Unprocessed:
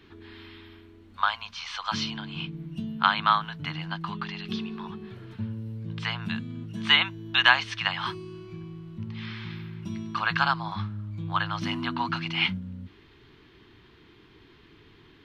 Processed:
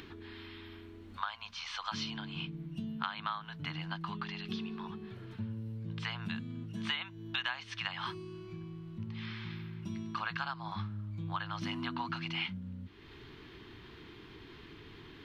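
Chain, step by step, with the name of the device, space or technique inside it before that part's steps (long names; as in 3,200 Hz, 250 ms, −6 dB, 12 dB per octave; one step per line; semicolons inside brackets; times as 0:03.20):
upward and downward compression (upward compression, threshold −37 dBFS; downward compressor 6 to 1, threshold −28 dBFS, peak gain reduction 15 dB)
level −5 dB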